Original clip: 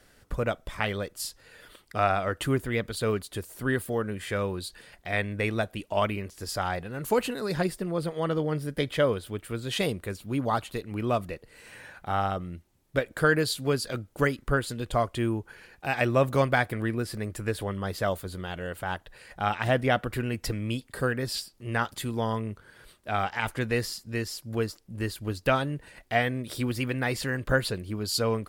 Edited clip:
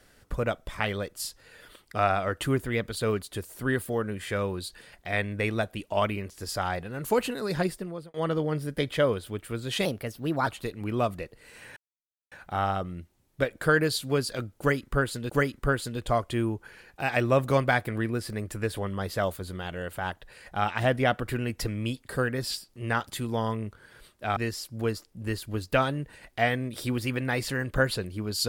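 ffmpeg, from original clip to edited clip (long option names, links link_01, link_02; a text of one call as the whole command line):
ffmpeg -i in.wav -filter_complex "[0:a]asplit=7[link_01][link_02][link_03][link_04][link_05][link_06][link_07];[link_01]atrim=end=8.14,asetpts=PTS-STARTPTS,afade=type=out:start_time=7.67:duration=0.47[link_08];[link_02]atrim=start=8.14:end=9.854,asetpts=PTS-STARTPTS,afade=type=in:duration=0.004:curve=hsin[link_09];[link_03]atrim=start=9.85:end=10.57,asetpts=PTS-STARTPTS,asetrate=51597,aresample=44100,atrim=end_sample=27138,asetpts=PTS-STARTPTS[link_10];[link_04]atrim=start=10.566:end=11.87,asetpts=PTS-STARTPTS,afade=type=out:start_time=1.3:duration=0.004:curve=hsin,apad=pad_dur=0.55[link_11];[link_05]atrim=start=11.87:end=14.852,asetpts=PTS-STARTPTS,afade=type=in:duration=0.004:curve=hsin[link_12];[link_06]atrim=start=14.138:end=23.212[link_13];[link_07]atrim=start=24.098[link_14];[link_08][link_09]concat=n=2:v=0:a=1[link_15];[link_15][link_10]acrossfade=duration=0.004:curve1=hsin:curve2=hsin[link_16];[link_11][link_12]concat=n=2:v=0:a=1[link_17];[link_16][link_17]acrossfade=duration=0.004:curve1=hsin:curve2=hsin[link_18];[link_18][link_13]acrossfade=duration=0.004:curve1=hsin:curve2=hsin[link_19];[link_19][link_14]acrossfade=duration=0.004:curve1=hsin:curve2=hsin" out.wav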